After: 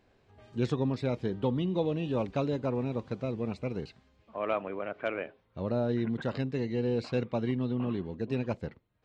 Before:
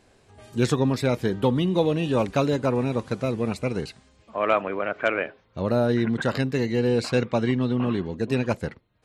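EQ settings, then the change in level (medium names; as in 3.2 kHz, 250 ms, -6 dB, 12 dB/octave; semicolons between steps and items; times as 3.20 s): treble shelf 2.4 kHz +11.5 dB; dynamic bell 1.6 kHz, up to -5 dB, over -41 dBFS, Q 1.4; tape spacing loss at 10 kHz 33 dB; -6.5 dB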